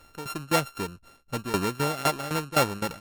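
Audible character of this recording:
a buzz of ramps at a fixed pitch in blocks of 32 samples
tremolo saw down 3.9 Hz, depth 85%
MP3

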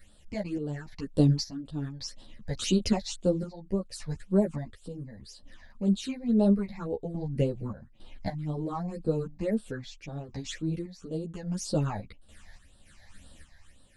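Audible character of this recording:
phaser sweep stages 8, 1.9 Hz, lowest notch 360–2,100 Hz
sample-and-hold tremolo, depth 80%
a shimmering, thickened sound

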